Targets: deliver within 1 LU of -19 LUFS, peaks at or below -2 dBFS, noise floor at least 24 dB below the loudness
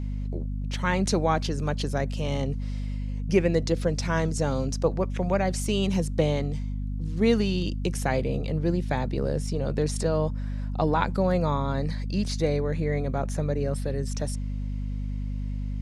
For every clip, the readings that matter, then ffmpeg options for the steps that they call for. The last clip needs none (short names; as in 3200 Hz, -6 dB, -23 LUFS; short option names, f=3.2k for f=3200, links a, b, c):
hum 50 Hz; harmonics up to 250 Hz; hum level -27 dBFS; loudness -27.5 LUFS; peak -7.0 dBFS; loudness target -19.0 LUFS
-> -af "bandreject=f=50:t=h:w=4,bandreject=f=100:t=h:w=4,bandreject=f=150:t=h:w=4,bandreject=f=200:t=h:w=4,bandreject=f=250:t=h:w=4"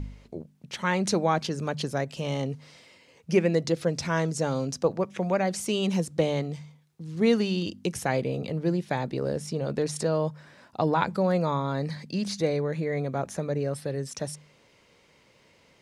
hum none; loudness -28.0 LUFS; peak -8.0 dBFS; loudness target -19.0 LUFS
-> -af "volume=9dB,alimiter=limit=-2dB:level=0:latency=1"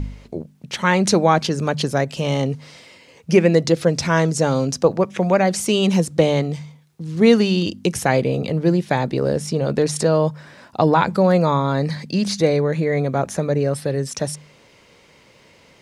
loudness -19.0 LUFS; peak -2.0 dBFS; noise floor -52 dBFS